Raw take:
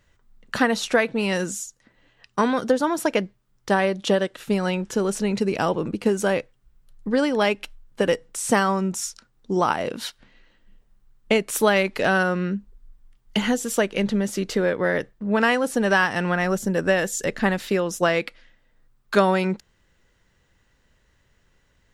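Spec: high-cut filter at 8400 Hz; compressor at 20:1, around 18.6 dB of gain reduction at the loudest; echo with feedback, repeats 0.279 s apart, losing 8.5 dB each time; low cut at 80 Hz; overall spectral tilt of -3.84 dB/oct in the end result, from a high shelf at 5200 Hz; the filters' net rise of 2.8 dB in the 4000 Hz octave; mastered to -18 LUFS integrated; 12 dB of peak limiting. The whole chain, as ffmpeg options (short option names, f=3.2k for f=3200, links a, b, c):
-af "highpass=80,lowpass=8.4k,equalizer=f=4k:t=o:g=6,highshelf=f=5.2k:g=-4.5,acompressor=threshold=-33dB:ratio=20,alimiter=level_in=4dB:limit=-24dB:level=0:latency=1,volume=-4dB,aecho=1:1:279|558|837|1116:0.376|0.143|0.0543|0.0206,volume=21dB"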